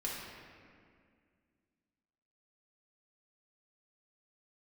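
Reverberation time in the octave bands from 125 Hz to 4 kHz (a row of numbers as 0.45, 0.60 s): 2.5, 2.8, 2.2, 1.9, 2.0, 1.4 s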